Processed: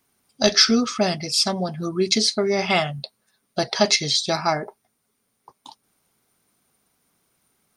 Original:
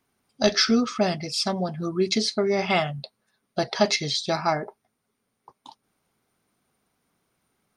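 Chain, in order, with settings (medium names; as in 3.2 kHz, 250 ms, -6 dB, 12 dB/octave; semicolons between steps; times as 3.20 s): treble shelf 4.7 kHz +9.5 dB; trim +1.5 dB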